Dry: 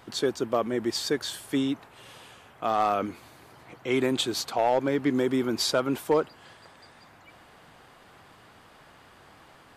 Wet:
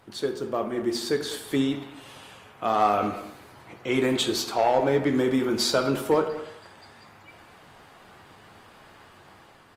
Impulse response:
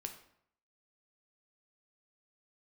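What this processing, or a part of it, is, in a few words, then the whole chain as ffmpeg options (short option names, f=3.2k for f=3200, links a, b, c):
speakerphone in a meeting room: -filter_complex "[1:a]atrim=start_sample=2205[a];[0:a][a]afir=irnorm=-1:irlink=0,asplit=2[b][c];[c]adelay=200,highpass=300,lowpass=3.4k,asoftclip=type=hard:threshold=-25.5dB,volume=-13dB[d];[b][d]amix=inputs=2:normalize=0,dynaudnorm=f=360:g=5:m=5dB" -ar 48000 -c:a libopus -b:a 32k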